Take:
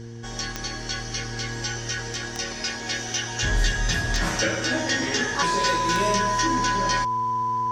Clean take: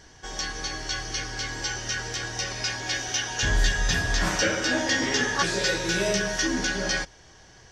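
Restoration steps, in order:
click removal
hum removal 116.1 Hz, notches 4
notch filter 1,000 Hz, Q 30

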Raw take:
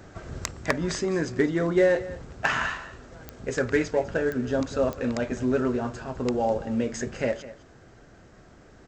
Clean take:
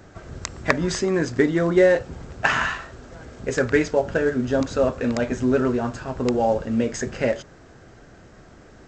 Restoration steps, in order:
clipped peaks rebuilt −12 dBFS
click removal
echo removal 204 ms −16.5 dB
level correction +4.5 dB, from 0:00.51

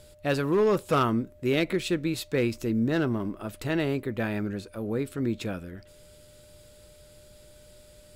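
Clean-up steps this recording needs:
clipped peaks rebuilt −17 dBFS
notch filter 600 Hz, Q 30

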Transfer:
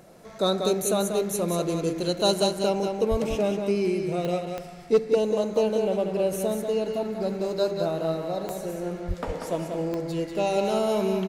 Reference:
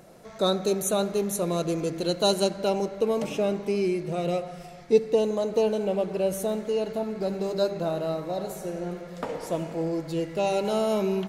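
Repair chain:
clipped peaks rebuilt −12.5 dBFS
click removal
0:03.10–0:03.22: high-pass filter 140 Hz 24 dB per octave
0:09.07–0:09.19: high-pass filter 140 Hz 24 dB per octave
echo removal 189 ms −6 dB

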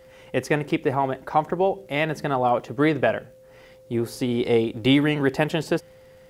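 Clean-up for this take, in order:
click removal
notch filter 520 Hz, Q 30

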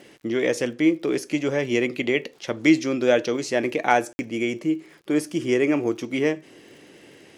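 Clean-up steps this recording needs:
click removal
ambience match 0:04.13–0:04.19

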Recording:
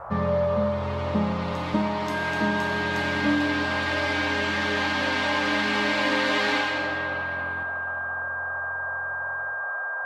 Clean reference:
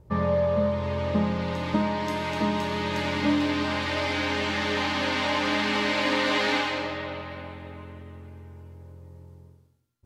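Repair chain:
notch filter 1,600 Hz, Q 30
noise reduction from a noise print 15 dB
echo removal 366 ms −19 dB
level 0 dB, from 0:07.63 +6 dB

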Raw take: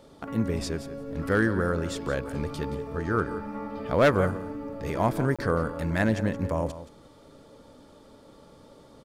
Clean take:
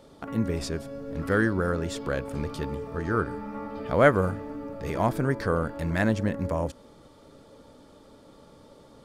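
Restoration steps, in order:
clipped peaks rebuilt −13.5 dBFS
repair the gap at 0:05.36, 26 ms
echo removal 173 ms −13.5 dB

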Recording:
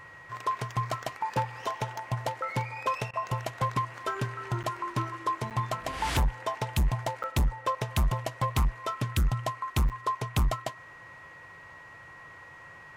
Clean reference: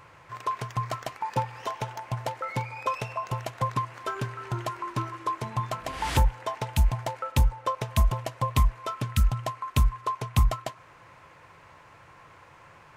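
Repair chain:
clipped peaks rebuilt −21 dBFS
notch filter 1,900 Hz, Q 30
repair the gap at 0:04.63/0:05.50/0:07.23/0:09.89, 8 ms
repair the gap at 0:03.11, 23 ms

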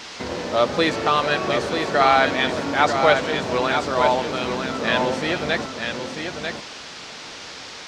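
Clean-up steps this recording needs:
noise reduction from a noise print 28 dB
echo removal 943 ms −6 dB

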